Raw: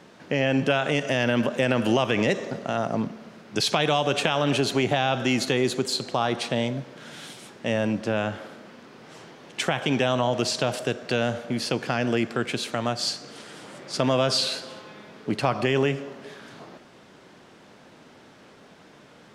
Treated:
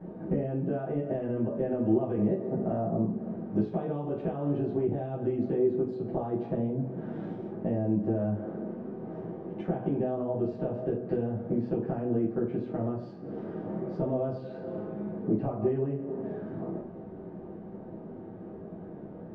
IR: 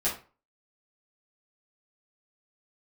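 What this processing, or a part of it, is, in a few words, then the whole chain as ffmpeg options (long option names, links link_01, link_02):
television next door: -filter_complex "[0:a]acompressor=threshold=-34dB:ratio=6,lowpass=440[link_01];[1:a]atrim=start_sample=2205[link_02];[link_01][link_02]afir=irnorm=-1:irlink=0,asettb=1/sr,asplit=3[link_03][link_04][link_05];[link_03]atrim=end=4.854[link_06];[link_04]atrim=start=4.85:end=5.41,asetpts=PTS-STARTPTS,afade=type=in:duration=0.004:curve=qsin,afade=type=out:start_time=0.556:duration=0.004:curve=qsin,equalizer=frequency=850:width_type=o:width=0.77:gain=-5[link_07];[link_05]atrim=start=5.406[link_08];[link_06][link_07]acrossfade=duration=0.004:curve1=hsin:curve2=qsin[link_09];[link_09][link_08]acrossfade=duration=0.004:curve1=qsin:curve2=hsin,volume=3dB"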